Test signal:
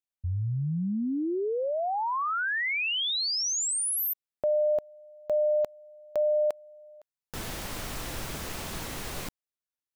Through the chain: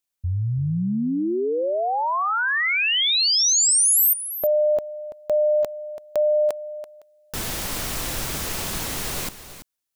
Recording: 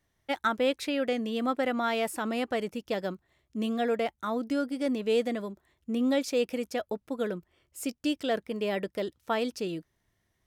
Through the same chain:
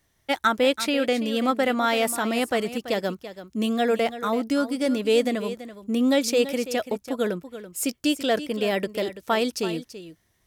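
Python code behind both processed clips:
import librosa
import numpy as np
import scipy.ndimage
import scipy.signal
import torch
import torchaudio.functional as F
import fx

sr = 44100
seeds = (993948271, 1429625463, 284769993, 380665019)

p1 = fx.high_shelf(x, sr, hz=3800.0, db=6.5)
p2 = p1 + fx.echo_single(p1, sr, ms=334, db=-13.0, dry=0)
y = p2 * librosa.db_to_amplitude(5.5)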